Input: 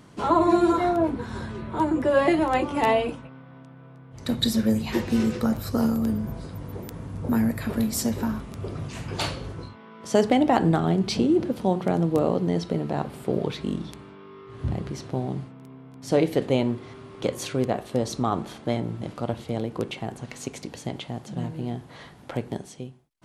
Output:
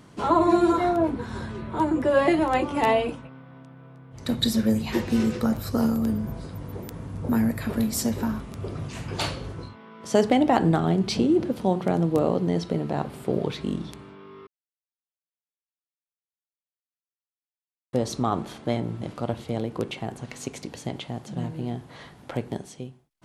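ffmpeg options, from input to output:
ffmpeg -i in.wav -filter_complex "[0:a]asplit=3[link_01][link_02][link_03];[link_01]atrim=end=14.47,asetpts=PTS-STARTPTS,afade=type=out:start_time=14.466:duration=0.004:curve=hsin[link_04];[link_02]atrim=start=14.47:end=17.93,asetpts=PTS-STARTPTS,volume=0[link_05];[link_03]atrim=start=17.93,asetpts=PTS-STARTPTS,afade=type=in:duration=0.004:curve=hsin[link_06];[link_04][link_05][link_06]concat=n=3:v=0:a=1" out.wav

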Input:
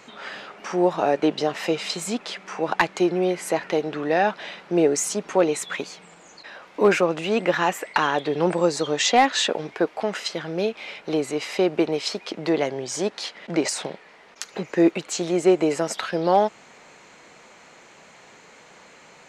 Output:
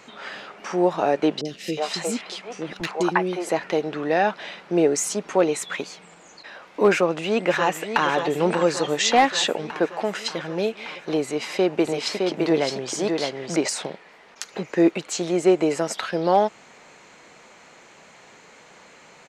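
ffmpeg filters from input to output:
ffmpeg -i in.wav -filter_complex "[0:a]asettb=1/sr,asplit=3[link_01][link_02][link_03];[link_01]atrim=end=1.414[link_04];[link_02]atrim=start=1.41:end=3.49,asetpts=PTS-STARTPTS,afade=type=in:duration=0.004:curve=qsin,afade=type=out:start_time=2.076:duration=0.004:curve=qsin,acrossover=split=430|2300[link_05][link_06][link_07];[link_07]adelay=40[link_08];[link_06]adelay=360[link_09];[link_05][link_09][link_08]amix=inputs=3:normalize=0,atrim=end_sample=91728[link_10];[link_03]atrim=start=3.486[link_11];[link_04][link_10]acrossfade=duration=0.004:curve1=hsin:curve2=qsin[link_12];[link_12][link_11]acrossfade=duration=0.004:curve1=qsin:curve2=hsin,asplit=2[link_13][link_14];[link_14]afade=type=in:start_time=6.92:duration=0.01,afade=type=out:start_time=8.05:duration=0.01,aecho=0:1:580|1160|1740|2320|2900|3480|4060|4640|5220|5800|6380:0.375837|0.263086|0.18416|0.128912|0.0902386|0.063167|0.0442169|0.0309518|0.0216663|0.0151664|0.0106165[link_15];[link_13][link_15]amix=inputs=2:normalize=0,asettb=1/sr,asplit=3[link_16][link_17][link_18];[link_16]atrim=end=11.234[link_19];[link_17]atrim=start=11.23:end=13.56,asetpts=PTS-STARTPTS,afade=type=in:duration=0.004:curve=qsin,afade=type=out:start_time=2.326:duration=0.004:curve=qsin,aecho=1:1:613:0.668,atrim=end_sample=102753[link_20];[link_18]atrim=start=13.556[link_21];[link_19][link_20]acrossfade=duration=0.004:curve1=hsin:curve2=qsin[link_22];[link_22][link_21]acrossfade=duration=0.004:curve1=qsin:curve2=hsin" out.wav

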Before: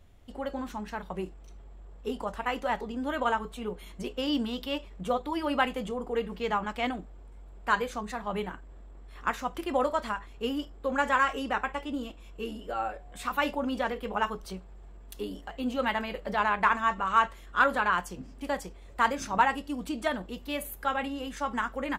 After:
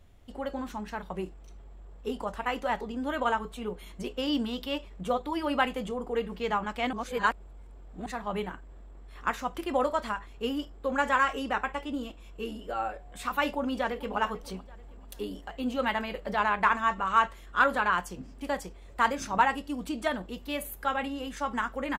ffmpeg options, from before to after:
ffmpeg -i in.wav -filter_complex "[0:a]asplit=2[link_01][link_02];[link_02]afade=type=in:start_time=13.5:duration=0.01,afade=type=out:start_time=14.16:duration=0.01,aecho=0:1:440|880|1320:0.149624|0.0598494|0.0239398[link_03];[link_01][link_03]amix=inputs=2:normalize=0,asplit=3[link_04][link_05][link_06];[link_04]atrim=end=6.932[link_07];[link_05]atrim=start=6.928:end=8.062,asetpts=PTS-STARTPTS,areverse[link_08];[link_06]atrim=start=8.058[link_09];[link_07][link_08]acrossfade=duration=0.004:curve1=hsin:curve2=hsin[link_10];[link_10][link_09]acrossfade=duration=0.004:curve1=hsin:curve2=hsin" out.wav

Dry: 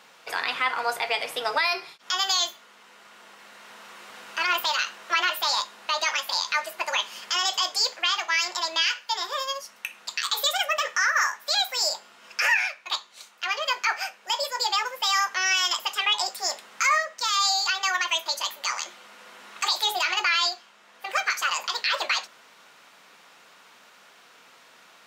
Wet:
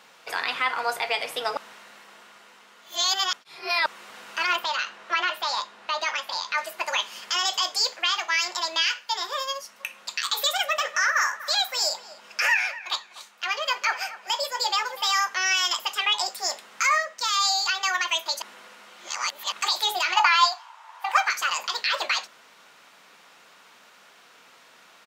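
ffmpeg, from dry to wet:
ffmpeg -i in.wav -filter_complex "[0:a]asettb=1/sr,asplit=3[link_01][link_02][link_03];[link_01]atrim=end=4.564[link_04];[link_02]atrim=start=4.56:end=6.58,asetpts=PTS-STARTPTS,afade=type=in:duration=0.004:curve=qsin,afade=type=out:start_time=2.016:duration=0.004:curve=qsin,aemphasis=mode=reproduction:type=50kf[link_05];[link_03]atrim=start=6.576[link_06];[link_04][link_05]acrossfade=duration=0.004:curve1=hsin:curve2=qsin[link_07];[link_07][link_06]acrossfade=duration=0.004:curve1=qsin:curve2=hsin,asplit=3[link_08][link_09][link_10];[link_08]afade=type=out:start_time=9.79:duration=0.02[link_11];[link_09]asplit=2[link_12][link_13];[link_13]adelay=245,lowpass=frequency=2000:poles=1,volume=-14dB,asplit=2[link_14][link_15];[link_15]adelay=245,lowpass=frequency=2000:poles=1,volume=0.29,asplit=2[link_16][link_17];[link_17]adelay=245,lowpass=frequency=2000:poles=1,volume=0.29[link_18];[link_12][link_14][link_16][link_18]amix=inputs=4:normalize=0,afade=type=in:start_time=9.79:duration=0.02,afade=type=out:start_time=15.12:duration=0.02[link_19];[link_10]afade=type=in:start_time=15.12:duration=0.02[link_20];[link_11][link_19][link_20]amix=inputs=3:normalize=0,asettb=1/sr,asplit=3[link_21][link_22][link_23];[link_21]atrim=end=20.164[link_24];[link_22]atrim=start=20.16:end=21.28,asetpts=PTS-STARTPTS,afade=type=in:duration=0.004:curve=qsin,afade=type=out:start_time=1.116:duration=0.004:curve=qsin,highpass=frequency=920:width_type=q:width=8.4[link_25];[link_23]atrim=start=21.276[link_26];[link_24][link_25]acrossfade=duration=0.004:curve1=hsin:curve2=qsin[link_27];[link_27][link_26]acrossfade=duration=0.004:curve1=qsin:curve2=hsin,asplit=5[link_28][link_29][link_30][link_31][link_32];[link_28]atrim=end=1.572[link_33];[link_29]atrim=start=1.568:end=3.862,asetpts=PTS-STARTPTS,areverse[link_34];[link_30]atrim=start=3.858:end=18.422[link_35];[link_31]atrim=start=18.418:end=19.522,asetpts=PTS-STARTPTS,areverse[link_36];[link_32]atrim=start=19.518[link_37];[link_33][link_34]acrossfade=duration=0.004:curve1=hsin:curve2=hsin[link_38];[link_38][link_35]acrossfade=duration=0.004:curve1=hsin:curve2=hsin[link_39];[link_39][link_36]acrossfade=duration=0.004:curve1=hsin:curve2=hsin[link_40];[link_40][link_37]acrossfade=duration=0.004:curve1=hsin:curve2=hsin" out.wav

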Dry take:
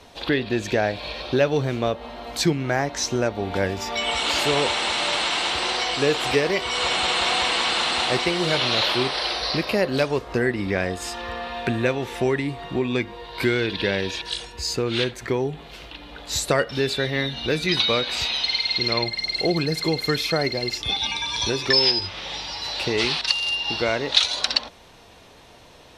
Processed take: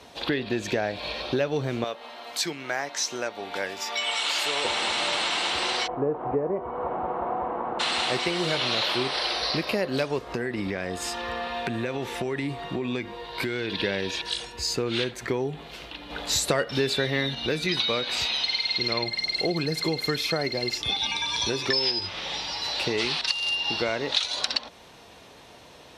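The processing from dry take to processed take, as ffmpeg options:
ffmpeg -i in.wav -filter_complex "[0:a]asettb=1/sr,asplit=3[link_01][link_02][link_03];[link_01]atrim=end=1.844[link_04];[link_02]atrim=start=1.84:end=4.65,asetpts=PTS-STARTPTS,afade=type=in:duration=0.004:curve=qsin,afade=type=out:start_time=2.806:duration=0.004:curve=qsin,highpass=frequency=1100:poles=1[link_05];[link_03]atrim=start=4.646[link_06];[link_04][link_05]acrossfade=duration=0.004:curve1=hsin:curve2=qsin[link_07];[link_07][link_06]acrossfade=duration=0.004:curve1=qsin:curve2=hsin,asplit=3[link_08][link_09][link_10];[link_08]afade=type=out:start_time=5.86:duration=0.02[link_11];[link_09]lowpass=frequency=1000:width=0.5412,lowpass=frequency=1000:width=1.3066,afade=type=in:start_time=5.86:duration=0.02,afade=type=out:start_time=7.79:duration=0.02[link_12];[link_10]afade=type=in:start_time=7.79:duration=0.02[link_13];[link_11][link_12][link_13]amix=inputs=3:normalize=0,asettb=1/sr,asplit=3[link_14][link_15][link_16];[link_14]atrim=end=10.204[link_17];[link_15]atrim=start=10.2:end=13.76,asetpts=PTS-STARTPTS,afade=type=in:duration=0.004:curve=qsin,afade=type=out:start_time=3.556:duration=0.004:curve=qsin,acompressor=threshold=-23dB:ratio=6:attack=3.2:release=140:knee=1:detection=peak[link_18];[link_16]atrim=start=13.756[link_19];[link_17][link_18]acrossfade=duration=0.004:curve1=hsin:curve2=qsin[link_20];[link_20][link_19]acrossfade=duration=0.004:curve1=qsin:curve2=hsin,asettb=1/sr,asplit=3[link_21][link_22][link_23];[link_21]atrim=end=16.104[link_24];[link_22]atrim=start=16.1:end=17.35,asetpts=PTS-STARTPTS,afade=type=in:duration=0.004:curve=qsin,afade=type=out:start_time=1.246:duration=0.004:curve=qsin,acontrast=35[link_25];[link_23]atrim=start=17.346[link_26];[link_24][link_25]acrossfade=duration=0.004:curve1=hsin:curve2=qsin[link_27];[link_27][link_26]acrossfade=duration=0.004:curve1=qsin:curve2=hsin,highpass=65,equalizer=frequency=92:width_type=o:width=0.85:gain=-3.5,acompressor=threshold=-24dB:ratio=2.5" out.wav

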